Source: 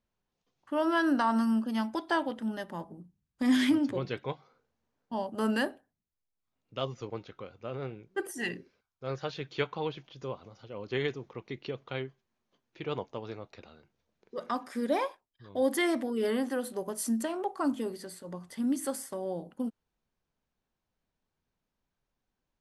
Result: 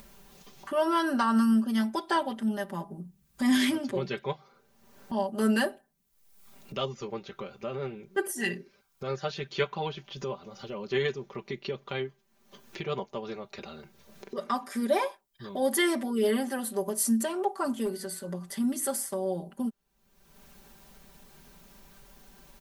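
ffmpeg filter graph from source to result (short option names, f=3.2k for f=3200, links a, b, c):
-filter_complex "[0:a]asettb=1/sr,asplit=3[a][b][c];[a]atrim=end=17.854[d];[b]atrim=start=17.85:end=18.31,asetpts=PTS-STARTPTS,afade=t=in:d=0.004:c=qsin,afade=t=out:st=0.456:d=0.004:c=qsin,aeval=exprs='val(0)+0.00141*sin(2*PI*1500*n/s)':c=same,asoftclip=type=hard:threshold=-30dB[e];[c]atrim=start=18.306[f];[d][e]acrossfade=d=0.004:c1=hsin:c2=qsin[g];[g][f]acrossfade=d=0.004:c1=qsin:c2=hsin,highshelf=f=8.2k:g=10,aecho=1:1:5.1:0.86,acompressor=mode=upward:threshold=-32dB:ratio=2.5"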